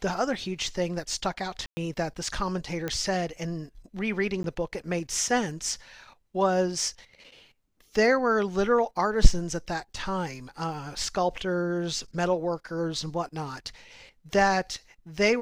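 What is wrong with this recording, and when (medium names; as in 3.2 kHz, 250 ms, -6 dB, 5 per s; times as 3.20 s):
1.66–1.77 s: dropout 110 ms
2.88 s: pop -16 dBFS
4.43–4.44 s: dropout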